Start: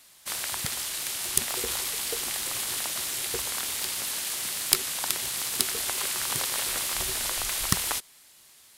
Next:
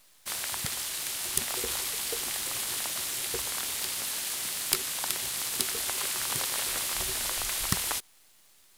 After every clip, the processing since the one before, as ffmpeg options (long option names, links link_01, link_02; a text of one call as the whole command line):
ffmpeg -i in.wav -af "acontrast=75,acrusher=bits=7:dc=4:mix=0:aa=0.000001,volume=-8.5dB" out.wav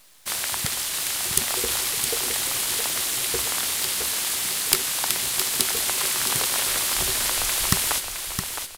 ffmpeg -i in.wav -af "aecho=1:1:665|1330|1995|2660:0.447|0.152|0.0516|0.0176,volume=6.5dB" out.wav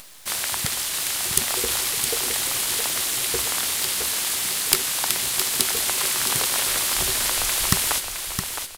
ffmpeg -i in.wav -af "acompressor=mode=upward:threshold=-36dB:ratio=2.5,volume=1dB" out.wav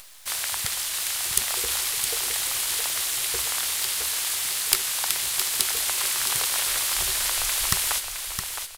ffmpeg -i in.wav -af "equalizer=frequency=230:width=0.62:gain=-11,volume=-2dB" out.wav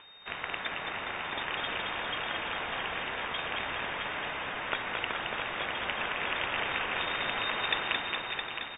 ffmpeg -i in.wav -filter_complex "[0:a]asplit=2[link_01][link_02];[link_02]aecho=0:1:220|418|596.2|756.6|900.9:0.631|0.398|0.251|0.158|0.1[link_03];[link_01][link_03]amix=inputs=2:normalize=0,lowpass=frequency=3100:width_type=q:width=0.5098,lowpass=frequency=3100:width_type=q:width=0.6013,lowpass=frequency=3100:width_type=q:width=0.9,lowpass=frequency=3100:width_type=q:width=2.563,afreqshift=-3700,volume=-1.5dB" out.wav